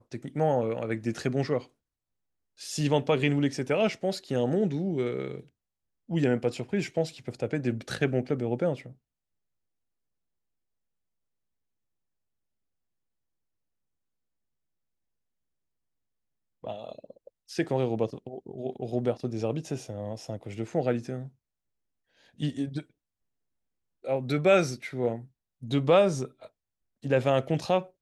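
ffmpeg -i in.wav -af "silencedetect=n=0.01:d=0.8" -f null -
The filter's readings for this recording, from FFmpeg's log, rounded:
silence_start: 1.62
silence_end: 2.61 | silence_duration: 0.98
silence_start: 8.91
silence_end: 16.64 | silence_duration: 7.73
silence_start: 21.28
silence_end: 22.40 | silence_duration: 1.12
silence_start: 22.82
silence_end: 24.05 | silence_duration: 1.23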